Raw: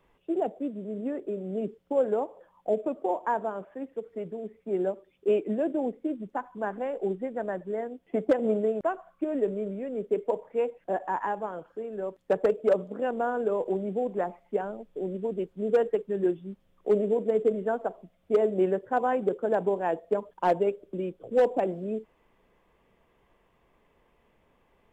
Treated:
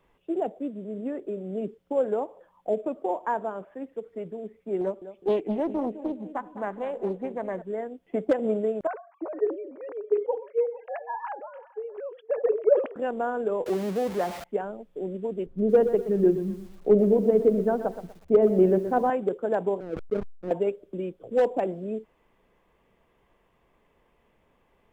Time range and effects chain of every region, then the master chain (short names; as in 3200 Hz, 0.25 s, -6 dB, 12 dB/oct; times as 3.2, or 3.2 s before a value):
4.81–7.62 bell 1600 Hz -3 dB 0.31 oct + feedback echo 0.205 s, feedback 38%, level -13 dB + Doppler distortion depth 0.42 ms
8.87–12.96 sine-wave speech + echo 0.456 s -23.5 dB + sustainer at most 140 dB/s
13.66–14.44 zero-crossing step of -32.5 dBFS + HPF 47 Hz
15.46–19.1 tilt -3.5 dB/oct + de-hum 129.6 Hz, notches 3 + lo-fi delay 0.122 s, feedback 35%, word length 8-bit, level -11 dB
19.8–20.51 Chebyshev low-pass 530 Hz, order 5 + backlash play -34.5 dBFS + sustainer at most 87 dB/s
whole clip: dry